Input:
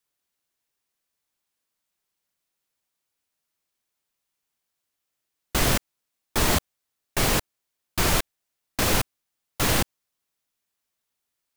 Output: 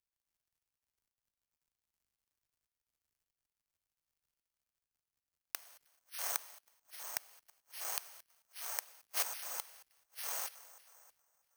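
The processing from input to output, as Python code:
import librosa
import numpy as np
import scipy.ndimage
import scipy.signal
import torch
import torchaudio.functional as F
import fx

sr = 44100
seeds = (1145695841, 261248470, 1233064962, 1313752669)

p1 = fx.block_float(x, sr, bits=3)
p2 = scipy.signal.sosfilt(scipy.signal.butter(4, 630.0, 'highpass', fs=sr, output='sos'), p1)
p3 = p2 + fx.echo_split(p2, sr, split_hz=1600.0, low_ms=318, high_ms=222, feedback_pct=52, wet_db=-15.5, dry=0)
p4 = fx.level_steps(p3, sr, step_db=13)
p5 = np.clip(p4, -10.0 ** (-26.0 / 20.0), 10.0 ** (-26.0 / 20.0))
p6 = p4 + F.gain(torch.from_numpy(p5), -3.0).numpy()
p7 = fx.tremolo_shape(p6, sr, shape='triangle', hz=0.52, depth_pct=55)
p8 = fx.gate_flip(p7, sr, shuts_db=-28.0, range_db=-39)
p9 = fx.dmg_crackle(p8, sr, seeds[0], per_s=120.0, level_db=-64.0)
p10 = (np.kron(scipy.signal.resample_poly(p9, 1, 6), np.eye(6)[0]) * 6)[:len(p9)]
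p11 = fx.band_widen(p10, sr, depth_pct=40)
y = F.gain(torch.from_numpy(p11), 2.5).numpy()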